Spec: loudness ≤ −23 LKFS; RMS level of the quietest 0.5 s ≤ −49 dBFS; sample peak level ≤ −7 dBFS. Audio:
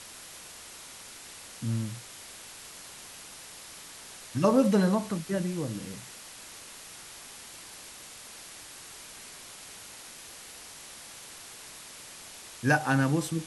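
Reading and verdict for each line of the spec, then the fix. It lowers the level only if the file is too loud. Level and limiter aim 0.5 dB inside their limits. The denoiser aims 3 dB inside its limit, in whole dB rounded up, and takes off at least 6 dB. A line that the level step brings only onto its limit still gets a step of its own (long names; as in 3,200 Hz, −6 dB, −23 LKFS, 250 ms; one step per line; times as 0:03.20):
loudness −29.0 LKFS: in spec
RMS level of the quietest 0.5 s −47 dBFS: out of spec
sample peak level −11.0 dBFS: in spec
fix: broadband denoise 6 dB, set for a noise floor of −47 dBFS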